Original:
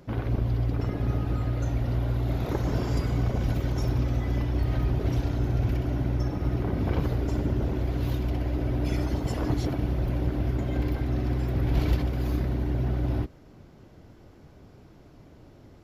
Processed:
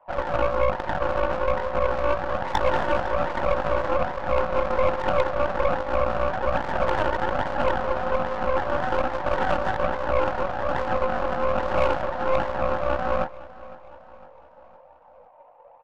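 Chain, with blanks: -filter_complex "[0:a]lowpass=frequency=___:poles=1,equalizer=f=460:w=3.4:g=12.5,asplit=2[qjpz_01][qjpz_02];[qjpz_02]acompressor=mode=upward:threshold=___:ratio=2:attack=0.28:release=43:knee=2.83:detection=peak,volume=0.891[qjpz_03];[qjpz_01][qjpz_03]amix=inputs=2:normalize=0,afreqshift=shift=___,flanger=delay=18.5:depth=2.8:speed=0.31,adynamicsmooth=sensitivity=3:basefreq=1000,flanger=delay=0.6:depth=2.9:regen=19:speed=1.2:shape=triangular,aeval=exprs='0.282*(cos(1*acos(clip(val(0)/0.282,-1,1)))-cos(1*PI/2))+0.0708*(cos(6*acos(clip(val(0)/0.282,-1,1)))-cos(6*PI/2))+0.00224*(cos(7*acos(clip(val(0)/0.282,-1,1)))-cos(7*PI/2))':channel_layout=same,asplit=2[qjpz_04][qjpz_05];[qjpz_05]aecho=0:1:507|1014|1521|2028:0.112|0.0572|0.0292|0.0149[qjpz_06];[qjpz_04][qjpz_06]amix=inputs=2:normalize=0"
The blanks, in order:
1300, 0.00794, 460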